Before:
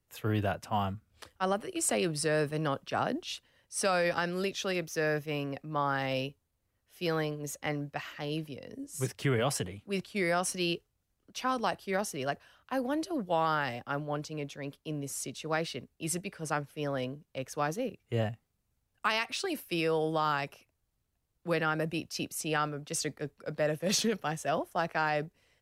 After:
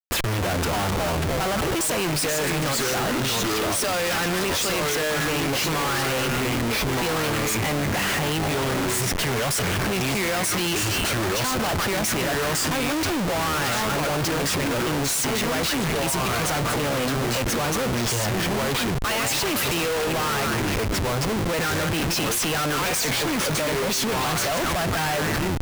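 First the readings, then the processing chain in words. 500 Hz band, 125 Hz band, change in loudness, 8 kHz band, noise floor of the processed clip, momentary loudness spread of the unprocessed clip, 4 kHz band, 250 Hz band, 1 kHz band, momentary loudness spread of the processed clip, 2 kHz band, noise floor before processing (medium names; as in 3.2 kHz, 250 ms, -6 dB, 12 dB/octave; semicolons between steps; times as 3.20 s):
+7.5 dB, +10.5 dB, +10.0 dB, +13.0 dB, -24 dBFS, 10 LU, +14.0 dB, +9.5 dB, +8.0 dB, 2 LU, +11.0 dB, -80 dBFS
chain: spectral gate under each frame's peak -30 dB strong; treble shelf 2.5 kHz +9 dB; saturation -20.5 dBFS, distortion -16 dB; ever faster or slower copies 135 ms, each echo -3 st, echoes 3, each echo -6 dB; on a send: repeats whose band climbs or falls 151 ms, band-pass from 1.7 kHz, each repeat 0.7 oct, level -6 dB; on the sum: Schmitt trigger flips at -42 dBFS; trim +8 dB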